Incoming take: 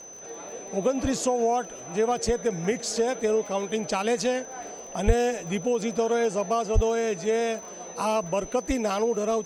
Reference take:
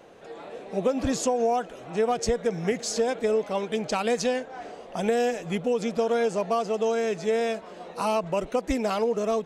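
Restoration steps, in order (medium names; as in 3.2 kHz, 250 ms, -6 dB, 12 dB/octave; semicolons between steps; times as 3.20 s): de-click; band-stop 6.1 kHz, Q 30; 5.06–5.18 s: high-pass 140 Hz 24 dB/octave; 6.74–6.86 s: high-pass 140 Hz 24 dB/octave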